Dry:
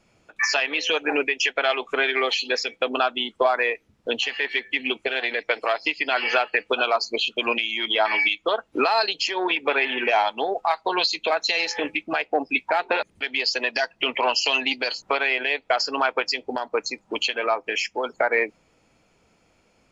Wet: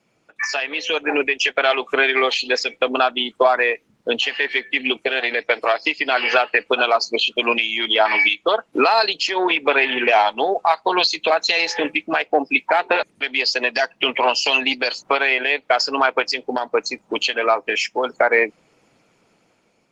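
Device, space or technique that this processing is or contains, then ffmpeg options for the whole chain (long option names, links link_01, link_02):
video call: -filter_complex "[0:a]asplit=3[link_01][link_02][link_03];[link_01]afade=type=out:start_time=11.99:duration=0.02[link_04];[link_02]highpass=frequency=110:poles=1,afade=type=in:start_time=11.99:duration=0.02,afade=type=out:start_time=13.61:duration=0.02[link_05];[link_03]afade=type=in:start_time=13.61:duration=0.02[link_06];[link_04][link_05][link_06]amix=inputs=3:normalize=0,highpass=frequency=120:width=0.5412,highpass=frequency=120:width=1.3066,dynaudnorm=framelen=420:gausssize=5:maxgain=10dB,volume=-1dB" -ar 48000 -c:a libopus -b:a 20k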